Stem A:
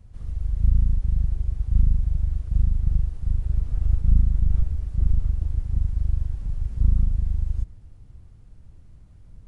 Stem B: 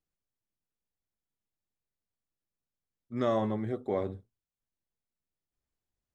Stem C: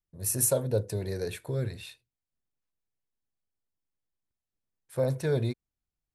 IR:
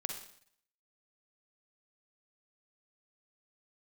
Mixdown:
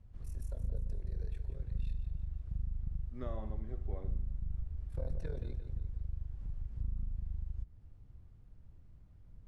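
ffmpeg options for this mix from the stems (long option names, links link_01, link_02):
-filter_complex "[0:a]volume=-10.5dB,asplit=2[link_01][link_02];[link_02]volume=-18.5dB[link_03];[1:a]volume=-15dB,asplit=2[link_04][link_05];[link_05]volume=-8.5dB[link_06];[2:a]acompressor=threshold=-30dB:ratio=4,tremolo=f=40:d=0.857,volume=-12dB,afade=type=in:start_time=1.78:duration=0.25:silence=0.421697,asplit=3[link_07][link_08][link_09];[link_08]volume=-10.5dB[link_10];[link_09]volume=-9dB[link_11];[link_01][link_04]amix=inputs=2:normalize=0,acompressor=threshold=-38dB:ratio=4,volume=0dB[link_12];[3:a]atrim=start_sample=2205[link_13];[link_03][link_06][link_10]amix=inputs=3:normalize=0[link_14];[link_14][link_13]afir=irnorm=-1:irlink=0[link_15];[link_11]aecho=0:1:173|346|519|692|865|1038:1|0.46|0.212|0.0973|0.0448|0.0206[link_16];[link_07][link_12][link_15][link_16]amix=inputs=4:normalize=0,aemphasis=mode=reproduction:type=50fm"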